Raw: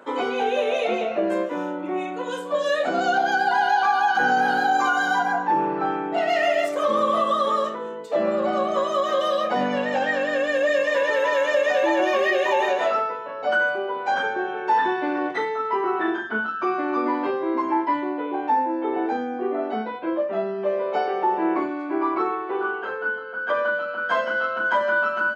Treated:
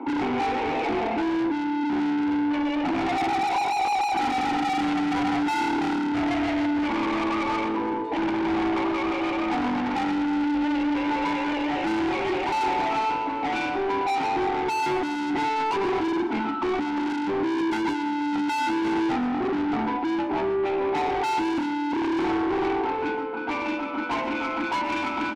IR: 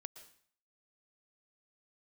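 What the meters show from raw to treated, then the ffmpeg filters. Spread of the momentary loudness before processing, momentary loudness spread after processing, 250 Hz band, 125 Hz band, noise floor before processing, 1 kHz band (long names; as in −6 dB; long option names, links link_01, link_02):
7 LU, 3 LU, +5.0 dB, can't be measured, −32 dBFS, −2.5 dB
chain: -filter_complex "[0:a]equalizer=frequency=270:width_type=o:width=1.4:gain=15,aecho=1:1:1.4:0.31,acrossover=split=190|1300[link_01][link_02][link_03];[link_02]acontrast=50[link_04];[link_01][link_04][link_03]amix=inputs=3:normalize=0,asoftclip=type=tanh:threshold=-13.5dB,asplit=3[link_05][link_06][link_07];[link_05]bandpass=frequency=300:width_type=q:width=8,volume=0dB[link_08];[link_06]bandpass=frequency=870:width_type=q:width=8,volume=-6dB[link_09];[link_07]bandpass=frequency=2240:width_type=q:width=8,volume=-9dB[link_10];[link_08][link_09][link_10]amix=inputs=3:normalize=0,asplit=2[link_11][link_12];[link_12]highpass=frequency=720:poles=1,volume=23dB,asoftclip=type=tanh:threshold=-17.5dB[link_13];[link_11][link_13]amix=inputs=2:normalize=0,lowpass=frequency=3200:poles=1,volume=-6dB,aeval=exprs='0.133*sin(PI/2*1.58*val(0)/0.133)':channel_layout=same,aecho=1:1:335:0.15[link_14];[1:a]atrim=start_sample=2205,afade=type=out:start_time=0.19:duration=0.01,atrim=end_sample=8820[link_15];[link_14][link_15]afir=irnorm=-1:irlink=0"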